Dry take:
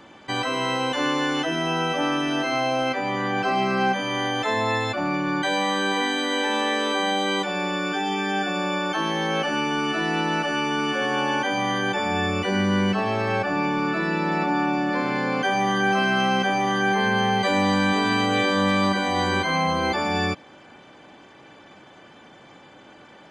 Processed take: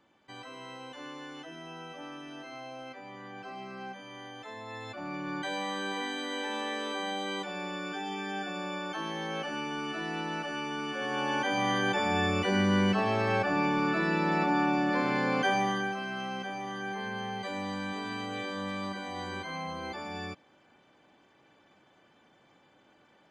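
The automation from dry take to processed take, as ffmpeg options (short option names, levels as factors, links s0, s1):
-af "volume=0.631,afade=t=in:st=4.66:d=0.67:silence=0.354813,afade=t=in:st=10.93:d=0.75:silence=0.446684,afade=t=out:st=15.49:d=0.47:silence=0.281838"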